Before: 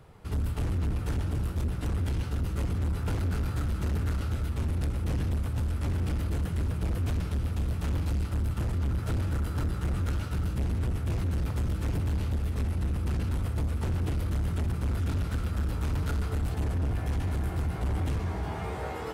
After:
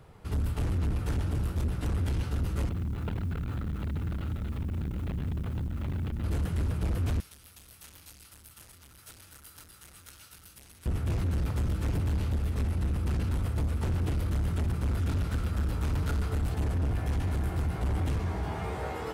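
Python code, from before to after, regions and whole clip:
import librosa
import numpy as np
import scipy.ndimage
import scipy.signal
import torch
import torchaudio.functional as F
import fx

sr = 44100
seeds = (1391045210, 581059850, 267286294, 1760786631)

y = fx.chain(x, sr, fx.steep_lowpass(hz=4000.0, slope=36),
    fx.quant_dither(seeds[0], bits=10, dither='triangular'),
    fx.transformer_sat(knee_hz=120.0), at=(2.69, 6.24))
y = fx.chain(y, sr, fx.pre_emphasis(coefficient=0.97),
    fx.notch(hz=7400.0, q=17.0), at=(7.2, 10.86))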